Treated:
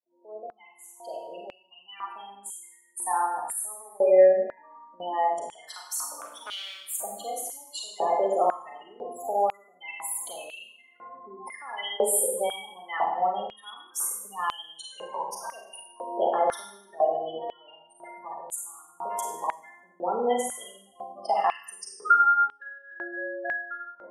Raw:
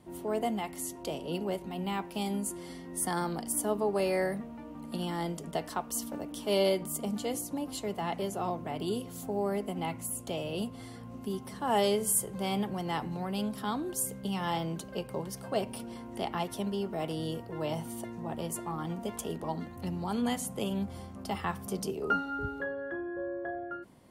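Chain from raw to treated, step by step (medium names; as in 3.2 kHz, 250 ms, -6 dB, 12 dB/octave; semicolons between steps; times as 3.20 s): fade-in on the opening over 5.77 s; spectral gate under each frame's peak -15 dB strong; in parallel at +1 dB: compression, threshold -42 dBFS, peak gain reduction 18 dB; 6.21–6.87 s: on the sum: overload inside the chain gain 31.5 dB; Schroeder reverb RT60 0.76 s, combs from 33 ms, DRR -0.5 dB; step-sequenced high-pass 2 Hz 540–3300 Hz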